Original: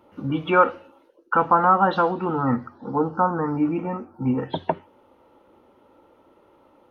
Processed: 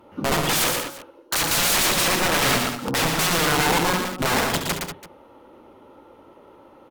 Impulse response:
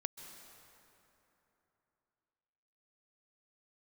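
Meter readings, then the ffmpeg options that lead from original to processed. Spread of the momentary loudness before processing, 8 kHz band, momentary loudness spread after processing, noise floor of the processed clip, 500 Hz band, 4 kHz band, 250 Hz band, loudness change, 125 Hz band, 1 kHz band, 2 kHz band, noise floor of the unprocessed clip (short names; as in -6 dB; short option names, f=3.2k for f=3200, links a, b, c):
11 LU, n/a, 9 LU, -51 dBFS, -1.5 dB, +20.5 dB, -3.0 dB, +2.0 dB, +0.5 dB, -3.5 dB, +7.5 dB, -58 dBFS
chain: -filter_complex "[0:a]aeval=exprs='(mod(12.6*val(0)+1,2)-1)/12.6':c=same,aecho=1:1:69|116|148|190|197|335:0.335|0.562|0.126|0.282|0.178|0.119[a];[1:a]atrim=start_sample=2205,atrim=end_sample=3528,asetrate=35721,aresample=44100[b];[a][b]afir=irnorm=-1:irlink=0,volume=6.5dB"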